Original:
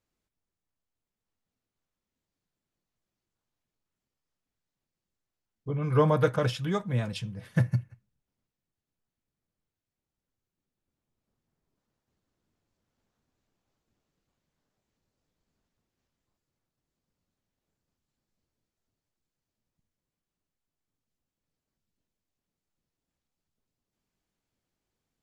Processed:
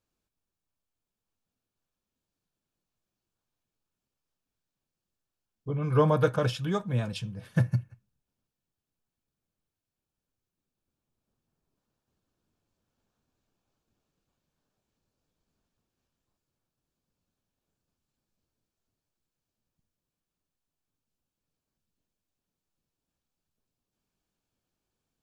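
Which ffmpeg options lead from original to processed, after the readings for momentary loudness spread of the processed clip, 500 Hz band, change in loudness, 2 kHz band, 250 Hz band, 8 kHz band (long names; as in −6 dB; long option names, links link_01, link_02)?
12 LU, 0.0 dB, 0.0 dB, −1.0 dB, 0.0 dB, 0.0 dB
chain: -af "bandreject=frequency=2000:width=7"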